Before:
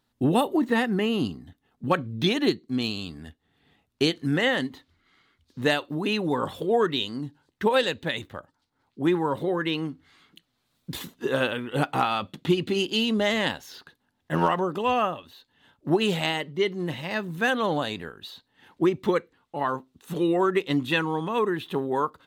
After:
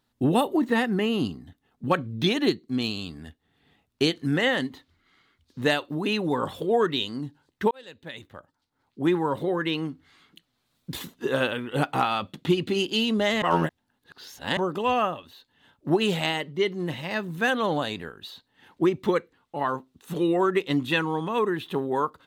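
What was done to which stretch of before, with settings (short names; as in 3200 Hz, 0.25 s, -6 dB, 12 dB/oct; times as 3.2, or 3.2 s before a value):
7.71–9.01 fade in
13.42–14.57 reverse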